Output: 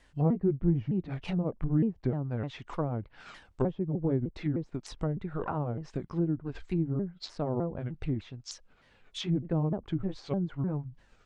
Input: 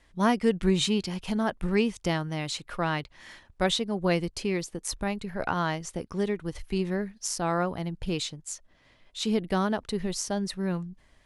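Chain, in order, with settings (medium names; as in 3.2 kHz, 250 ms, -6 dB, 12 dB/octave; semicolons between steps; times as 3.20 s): sawtooth pitch modulation -6.5 st, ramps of 304 ms; low-pass that closes with the level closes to 480 Hz, closed at -25.5 dBFS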